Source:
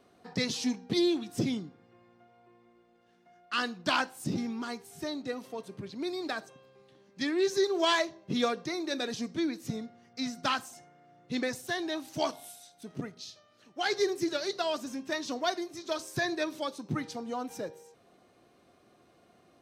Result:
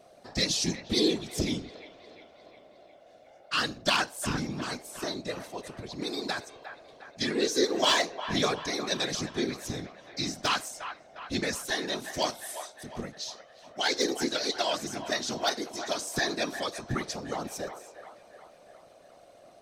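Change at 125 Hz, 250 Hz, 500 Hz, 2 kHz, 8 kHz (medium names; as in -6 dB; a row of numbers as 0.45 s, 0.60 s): +3.0 dB, -0.5 dB, +0.5 dB, +2.5 dB, +8.0 dB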